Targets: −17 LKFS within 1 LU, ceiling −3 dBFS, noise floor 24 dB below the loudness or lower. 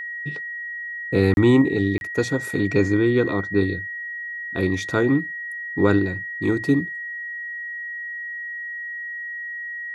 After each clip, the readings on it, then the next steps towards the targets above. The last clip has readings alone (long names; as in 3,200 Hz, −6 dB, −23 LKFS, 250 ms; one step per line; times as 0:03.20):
number of dropouts 2; longest dropout 31 ms; interfering tone 1,900 Hz; level of the tone −29 dBFS; integrated loudness −23.0 LKFS; sample peak −4.0 dBFS; target loudness −17.0 LKFS
→ repair the gap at 0:01.34/0:01.98, 31 ms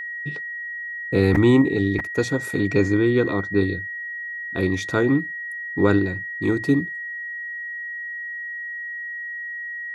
number of dropouts 0; interfering tone 1,900 Hz; level of the tone −29 dBFS
→ notch filter 1,900 Hz, Q 30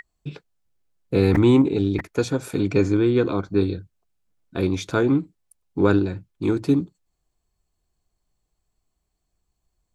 interfering tone none found; integrated loudness −21.5 LKFS; sample peak −4.5 dBFS; target loudness −17.0 LKFS
→ level +4.5 dB
brickwall limiter −3 dBFS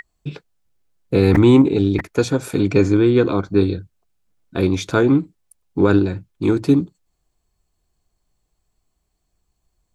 integrated loudness −17.0 LKFS; sample peak −3.0 dBFS; background noise floor −73 dBFS